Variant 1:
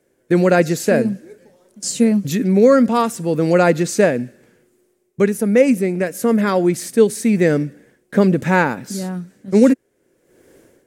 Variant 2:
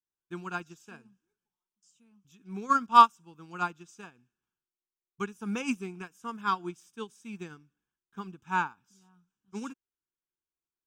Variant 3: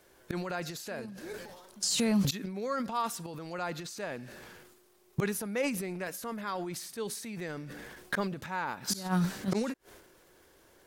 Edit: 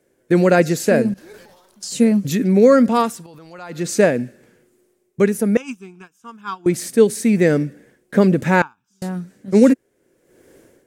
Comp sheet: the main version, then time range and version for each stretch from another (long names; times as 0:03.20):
1
0:01.14–0:01.92: punch in from 3
0:03.13–0:03.81: punch in from 3, crossfade 0.24 s
0:05.57–0:06.66: punch in from 2
0:08.62–0:09.02: punch in from 2